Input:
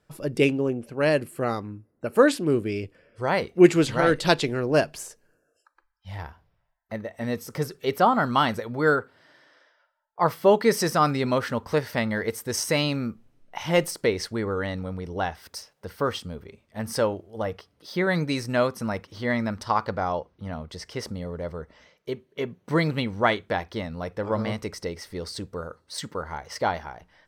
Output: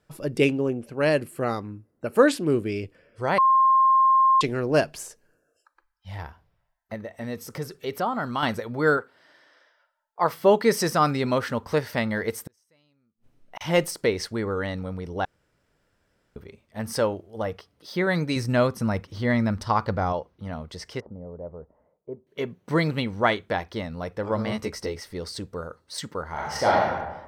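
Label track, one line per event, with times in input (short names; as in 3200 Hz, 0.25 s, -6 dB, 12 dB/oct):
3.380000	4.410000	bleep 1060 Hz -14.5 dBFS
6.940000	8.430000	compressor 1.5:1, threshold -34 dBFS
8.970000	10.330000	bell 73 Hz -10.5 dB 2.7 oct
12.440000	13.610000	flipped gate shuts at -24 dBFS, range -41 dB
15.250000	16.360000	room tone
18.360000	20.130000	low shelf 180 Hz +10 dB
21.000000	22.270000	ladder low-pass 980 Hz, resonance 30%
24.500000	25.000000	doubler 14 ms -3 dB
26.310000	26.900000	reverb throw, RT60 1.1 s, DRR -5 dB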